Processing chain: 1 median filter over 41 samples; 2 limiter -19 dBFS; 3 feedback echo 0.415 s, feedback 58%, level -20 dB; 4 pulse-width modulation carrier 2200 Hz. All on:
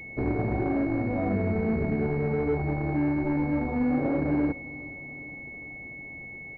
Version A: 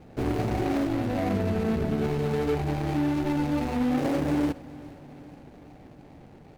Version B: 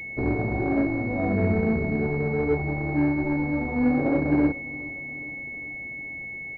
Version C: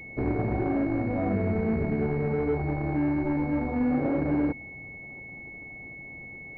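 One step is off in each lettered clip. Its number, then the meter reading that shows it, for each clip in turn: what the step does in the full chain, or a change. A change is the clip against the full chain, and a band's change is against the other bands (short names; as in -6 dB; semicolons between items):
4, 2 kHz band -4.0 dB; 2, crest factor change +3.5 dB; 3, momentary loudness spread change +1 LU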